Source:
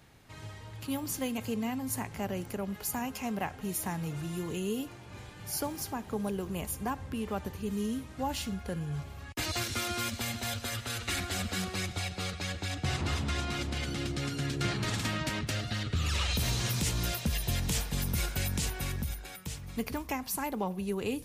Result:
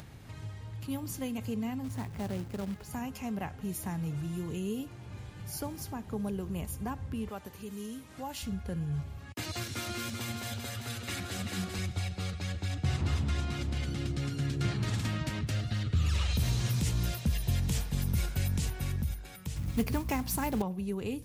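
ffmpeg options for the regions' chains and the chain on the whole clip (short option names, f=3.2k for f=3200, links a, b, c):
-filter_complex "[0:a]asettb=1/sr,asplit=3[a][b][c];[a]atrim=end=1.844[d];[b]atrim=start=1.84:end=2.91,asetpts=PTS-STARTPTS,afade=t=in:d=0.004:c=qsin,afade=t=out:st=1.066:d=0.004:c=qsin,lowpass=9.5k,highshelf=f=3.9k:g=-11.5,acrusher=bits=2:mode=log:mix=0:aa=0.000001[e];[c]atrim=start=2.906[f];[d][e]acrossfade=d=0.004:c1=hsin:c2=qsin[g];[g][f]acrossfade=d=0.004:c1=qsin:c2=hsin,asettb=1/sr,asplit=3[h][i][j];[h]atrim=end=7.294[k];[i]atrim=start=7.29:end=8.43,asetpts=PTS-STARTPTS,afade=t=in:d=0.004:c=qsin,afade=t=out:st=1.136:d=0.004:c=qsin,highpass=f=490:p=1,highshelf=f=7.9k:g=5[l];[j]atrim=start=8.426[m];[k][l]acrossfade=d=0.004:c1=hsin:c2=qsin[n];[n][m]acrossfade=d=0.004:c1=qsin:c2=hsin,asettb=1/sr,asplit=3[o][p][q];[o]atrim=end=9.184[r];[p]atrim=start=9.18:end=11.79,asetpts=PTS-STARTPTS,afade=t=in:d=0.004:c=qsin,afade=t=out:st=2.606:d=0.004:c=qsin,highpass=120,aecho=1:1:386:0.531,atrim=end_sample=115101[s];[q]atrim=start=11.786[t];[r][s]acrossfade=d=0.004:c1=hsin:c2=qsin[u];[u][t]acrossfade=d=0.004:c1=qsin:c2=hsin,asettb=1/sr,asplit=3[v][w][x];[v]atrim=end=19.564[y];[w]atrim=start=19.56:end=20.62,asetpts=PTS-STARTPTS,afade=t=in:d=0.004:c=qsin,afade=t=out:st=1.056:d=0.004:c=qsin,acrusher=bits=3:mode=log:mix=0:aa=0.000001,acontrast=36,aeval=exprs='val(0)+0.01*(sin(2*PI*60*n/s)+sin(2*PI*2*60*n/s)/2+sin(2*PI*3*60*n/s)/3+sin(2*PI*4*60*n/s)/4+sin(2*PI*5*60*n/s)/5)':c=same[z];[x]atrim=start=20.616[aa];[y][z]acrossfade=d=0.004:c1=hsin:c2=qsin[ab];[ab][aa]acrossfade=d=0.004:c1=qsin:c2=hsin,equalizer=f=94:w=0.48:g=9.5,acompressor=mode=upward:threshold=-34dB:ratio=2.5,volume=-5.5dB"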